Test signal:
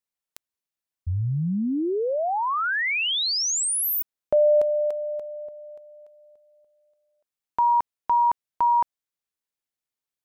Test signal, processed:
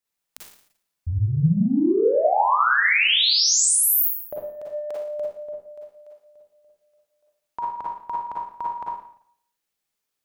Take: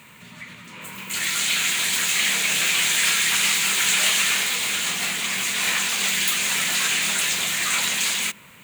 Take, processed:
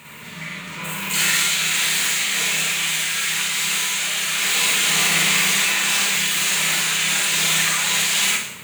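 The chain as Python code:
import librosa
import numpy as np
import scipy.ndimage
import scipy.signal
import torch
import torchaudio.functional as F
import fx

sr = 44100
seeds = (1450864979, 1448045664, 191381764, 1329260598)

y = fx.over_compress(x, sr, threshold_db=-26.0, ratio=-1.0)
y = fx.hum_notches(y, sr, base_hz=60, count=4)
y = fx.rev_schroeder(y, sr, rt60_s=0.63, comb_ms=38, drr_db=-4.5)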